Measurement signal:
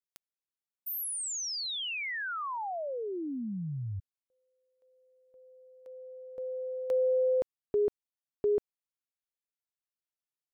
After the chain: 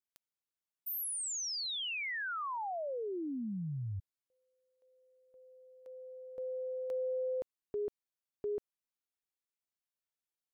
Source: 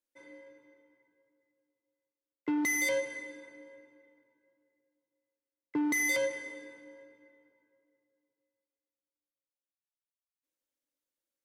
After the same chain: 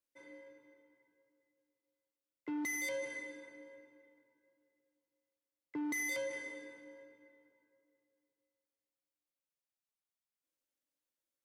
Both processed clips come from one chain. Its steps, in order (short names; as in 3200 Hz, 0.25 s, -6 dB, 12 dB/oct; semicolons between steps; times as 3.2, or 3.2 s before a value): limiter -29.5 dBFS; gain -2.5 dB